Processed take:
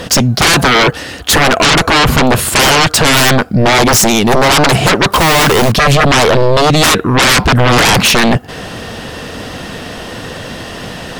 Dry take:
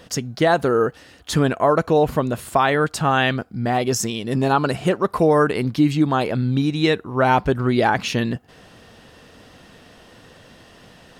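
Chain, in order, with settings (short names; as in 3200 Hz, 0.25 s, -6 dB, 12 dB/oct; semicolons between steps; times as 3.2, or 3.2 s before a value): 5.12–5.72 companded quantiser 4-bit; sine folder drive 18 dB, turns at -5 dBFS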